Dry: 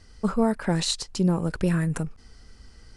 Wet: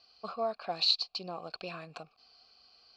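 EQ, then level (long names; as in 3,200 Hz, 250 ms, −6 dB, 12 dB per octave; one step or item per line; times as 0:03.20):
formant filter a
low-pass with resonance 4,400 Hz, resonance Q 11
high-shelf EQ 2,200 Hz +11 dB
0.0 dB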